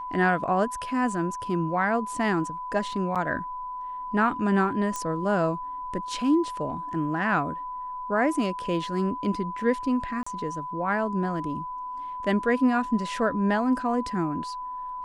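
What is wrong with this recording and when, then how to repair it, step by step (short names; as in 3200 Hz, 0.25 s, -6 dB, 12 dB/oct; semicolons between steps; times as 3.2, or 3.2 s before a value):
tone 1000 Hz -32 dBFS
3.15–3.16 gap 6.9 ms
4.96 pop -17 dBFS
10.23–10.27 gap 35 ms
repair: de-click; notch 1000 Hz, Q 30; interpolate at 3.15, 6.9 ms; interpolate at 10.23, 35 ms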